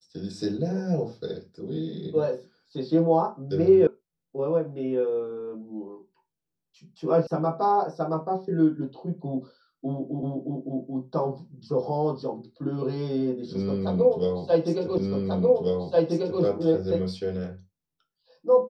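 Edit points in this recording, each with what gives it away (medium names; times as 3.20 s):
3.87 s: sound stops dead
7.27 s: sound stops dead
10.23 s: repeat of the last 0.36 s
14.98 s: repeat of the last 1.44 s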